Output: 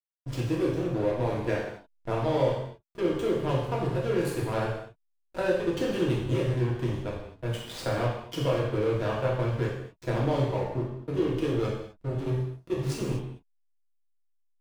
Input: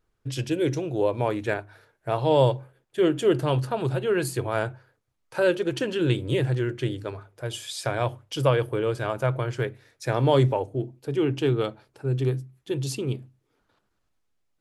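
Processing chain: compressor 5:1, threshold -24 dBFS, peak gain reduction 9 dB; reverse echo 40 ms -15.5 dB; backlash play -26.5 dBFS; non-linear reverb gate 0.28 s falling, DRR -5 dB; gain -3.5 dB

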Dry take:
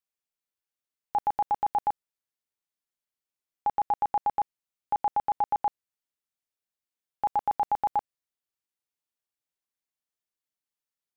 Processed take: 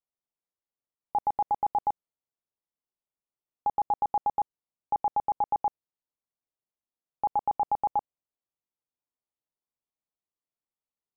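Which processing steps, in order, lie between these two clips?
polynomial smoothing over 65 samples

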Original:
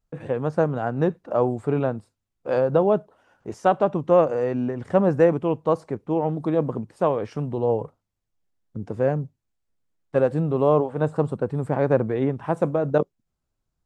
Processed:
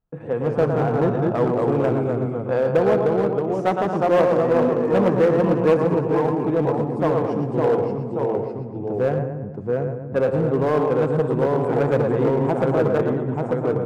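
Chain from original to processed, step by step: high shelf 2400 Hz -9 dB; split-band echo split 330 Hz, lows 0.187 s, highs 0.112 s, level -6 dB; echoes that change speed 0.142 s, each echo -1 st, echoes 2; in parallel at -6.5 dB: wavefolder -16.5 dBFS; on the sum: low shelf 120 Hz -7 dB; notch 590 Hz, Q 12; on a send at -13 dB: reverb RT60 1.1 s, pre-delay 3 ms; on the sum: mismatched tape noise reduction decoder only; gain -1 dB

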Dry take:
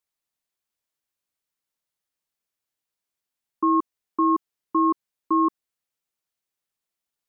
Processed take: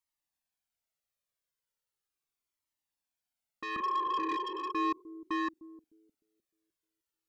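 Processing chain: 3.76–4.32 elliptic band-stop 310–1200 Hz; 3.81–4.69 spectral repair 360–1100 Hz before; soft clip -24.5 dBFS, distortion -8 dB; on a send: analogue delay 0.304 s, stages 1024, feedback 31%, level -13 dB; on the sum: cascading flanger falling 0.38 Hz

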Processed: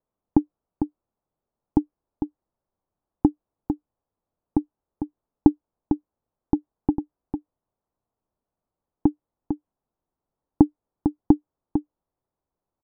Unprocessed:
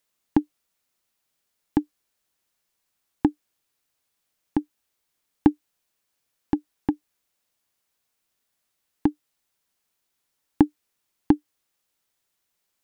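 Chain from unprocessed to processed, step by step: LPF 1000 Hz 24 dB/oct; low shelf 110 Hz +6 dB; on a send: echo 0.451 s -7.5 dB; on the sum: gain +1 dB

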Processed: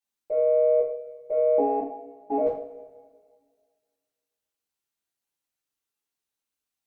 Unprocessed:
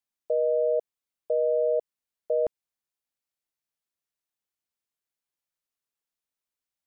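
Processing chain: 1.58–2.38 ring modulator 200 Hz; added harmonics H 4 -36 dB, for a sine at -17.5 dBFS; two-slope reverb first 0.46 s, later 1.9 s, from -18 dB, DRR -8.5 dB; gain -6.5 dB

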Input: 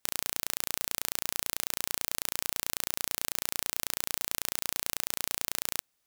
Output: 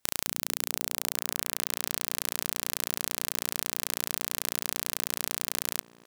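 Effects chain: low shelf 500 Hz +3 dB; on a send: delay with a stepping band-pass 0.224 s, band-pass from 190 Hz, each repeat 0.7 oct, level -10 dB; on the sum: gain +1.5 dB

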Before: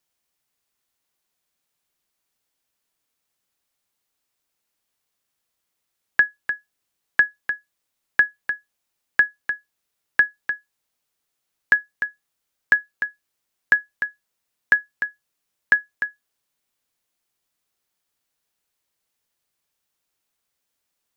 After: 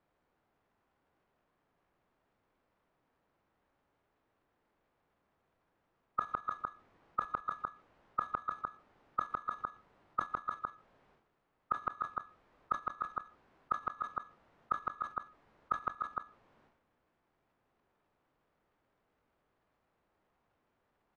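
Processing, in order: block floating point 3-bit; LPF 1500 Hz 12 dB/oct; compressor 5:1, threshold -24 dBFS, peak gain reduction 8.5 dB; formant shift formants -5 st; outdoor echo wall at 27 m, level -7 dB; flipped gate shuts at -22 dBFS, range -26 dB; transient shaper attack -6 dB, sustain +11 dB; gain +9.5 dB

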